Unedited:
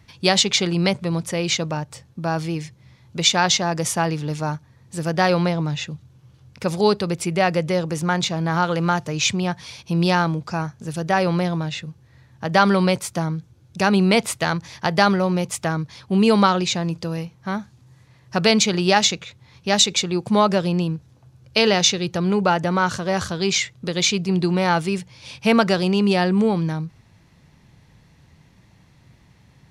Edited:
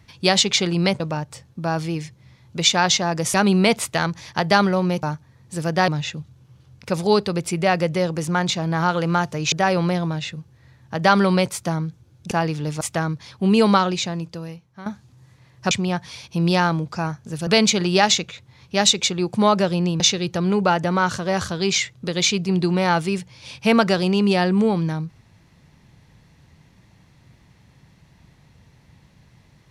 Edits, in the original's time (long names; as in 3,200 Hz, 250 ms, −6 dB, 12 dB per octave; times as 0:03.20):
0:01.00–0:01.60: remove
0:03.94–0:04.44: swap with 0:13.81–0:15.50
0:05.29–0:05.62: remove
0:09.26–0:11.02: move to 0:18.40
0:16.36–0:17.55: fade out, to −14 dB
0:20.93–0:21.80: remove